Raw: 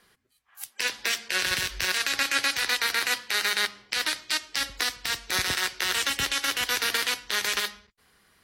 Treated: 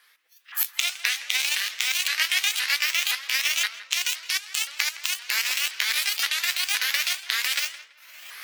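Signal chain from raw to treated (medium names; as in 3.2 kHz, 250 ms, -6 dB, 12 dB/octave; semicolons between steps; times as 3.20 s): sawtooth pitch modulation +9 st, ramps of 519 ms; recorder AGC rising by 31 dB/s; high-pass 1.5 kHz 12 dB/octave; peaking EQ 7.2 kHz -6 dB 1.5 oct; on a send: tape echo 164 ms, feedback 31%, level -14 dB, low-pass 2.8 kHz; on the sum: trim +5.5 dB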